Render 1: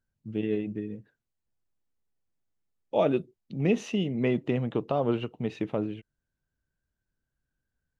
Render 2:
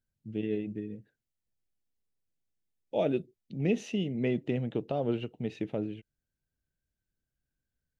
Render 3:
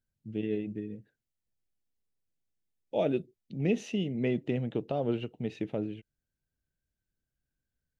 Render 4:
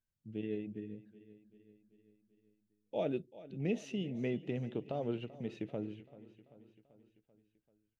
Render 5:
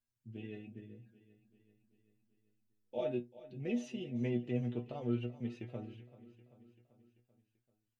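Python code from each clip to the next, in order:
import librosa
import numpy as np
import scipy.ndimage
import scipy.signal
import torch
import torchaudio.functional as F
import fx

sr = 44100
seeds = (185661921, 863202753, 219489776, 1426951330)

y1 = fx.peak_eq(x, sr, hz=1100.0, db=-12.0, octaves=0.61)
y1 = y1 * 10.0 ** (-3.0 / 20.0)
y2 = y1
y3 = fx.echo_feedback(y2, sr, ms=388, feedback_pct=59, wet_db=-17.5)
y3 = y3 * 10.0 ** (-6.5 / 20.0)
y4 = fx.stiff_resonator(y3, sr, f0_hz=120.0, decay_s=0.23, stiffness=0.002)
y4 = y4 * 10.0 ** (7.5 / 20.0)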